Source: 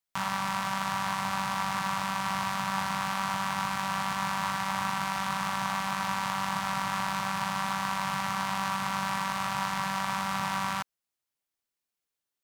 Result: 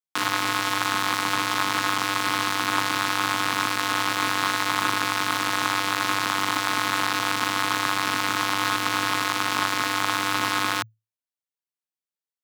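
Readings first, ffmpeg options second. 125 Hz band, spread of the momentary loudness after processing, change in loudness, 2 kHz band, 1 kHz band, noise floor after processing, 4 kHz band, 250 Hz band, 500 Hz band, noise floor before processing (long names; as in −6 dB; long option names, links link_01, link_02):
+0.5 dB, 1 LU, +7.0 dB, +9.0 dB, +4.5 dB, below −85 dBFS, +10.5 dB, +5.0 dB, +8.5 dB, below −85 dBFS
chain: -af "aeval=exprs='0.188*(cos(1*acos(clip(val(0)/0.188,-1,1)))-cos(1*PI/2))+0.0237*(cos(7*acos(clip(val(0)/0.188,-1,1)))-cos(7*PI/2))+0.00133*(cos(8*acos(clip(val(0)/0.188,-1,1)))-cos(8*PI/2))':channel_layout=same,afreqshift=110,volume=8.5dB"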